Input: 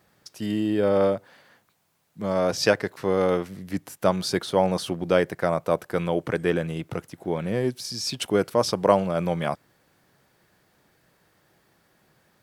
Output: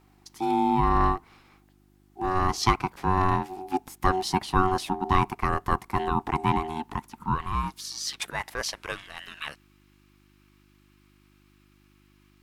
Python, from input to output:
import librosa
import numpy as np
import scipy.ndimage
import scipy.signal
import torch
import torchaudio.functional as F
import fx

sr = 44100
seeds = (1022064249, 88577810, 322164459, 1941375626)

y = fx.filter_sweep_highpass(x, sr, from_hz=210.0, to_hz=2100.0, start_s=6.57, end_s=9.01, q=2.0)
y = y * np.sin(2.0 * np.pi * 560.0 * np.arange(len(y)) / sr)
y = fx.dmg_buzz(y, sr, base_hz=50.0, harmonics=7, level_db=-61.0, tilt_db=-2, odd_only=False)